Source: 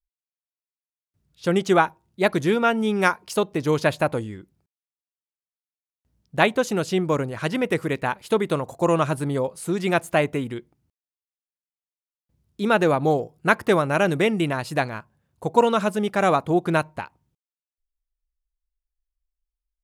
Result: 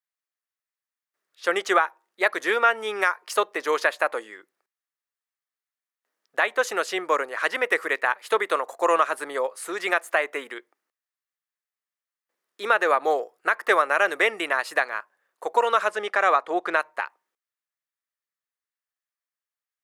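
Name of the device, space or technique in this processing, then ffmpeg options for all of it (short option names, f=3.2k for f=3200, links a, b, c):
laptop speaker: -filter_complex "[0:a]asettb=1/sr,asplit=3[a][b][c];[a]atrim=end=15.884[d];[b]atrim=start=15.88:end=16.8,asetpts=PTS-STARTPTS,afade=t=in:d=0.004:c=qsin,afade=t=out:st=0.916:d=0.004:c=qsin,lowpass=7.2k[e];[c]atrim=start=16.796[f];[d][e]acrossfade=d=0.004:c1=hsin:c2=qsin[g];[g][f]acrossfade=d=0.004:c1=qsin:c2=hsin,highpass=f=440:w=0.5412,highpass=f=440:w=1.3066,equalizer=f=1.2k:t=o:w=0.34:g=7,equalizer=f=1.8k:t=o:w=0.58:g=10,alimiter=limit=-8dB:level=0:latency=1:release=217"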